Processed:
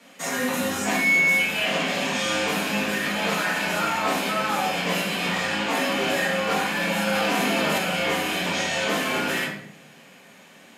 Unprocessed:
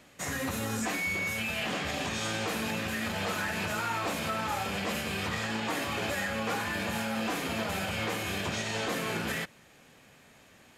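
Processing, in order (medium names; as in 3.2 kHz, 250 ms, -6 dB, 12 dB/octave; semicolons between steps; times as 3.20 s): Chebyshev high-pass 210 Hz, order 3; frequency shift -18 Hz; simulated room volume 120 m³, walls mixed, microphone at 1.7 m; 7.07–7.78 s: level flattener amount 100%; trim +1.5 dB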